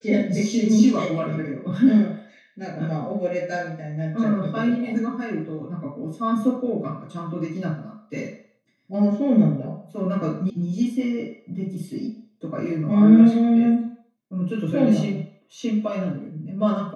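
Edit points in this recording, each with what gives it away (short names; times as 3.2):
10.5 sound cut off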